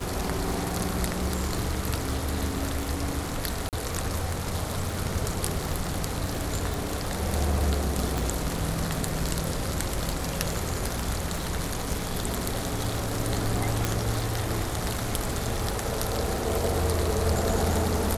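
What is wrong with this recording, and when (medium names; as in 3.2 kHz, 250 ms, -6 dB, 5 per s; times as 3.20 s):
crackle 48 per s -31 dBFS
3.69–3.73 s: dropout 38 ms
6.74 s: pop
8.18 s: pop
13.85 s: pop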